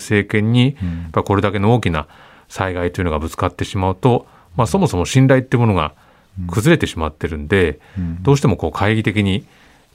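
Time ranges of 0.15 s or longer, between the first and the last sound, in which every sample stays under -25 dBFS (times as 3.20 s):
2.02–2.54 s
4.19–4.58 s
5.88–6.38 s
7.73–7.96 s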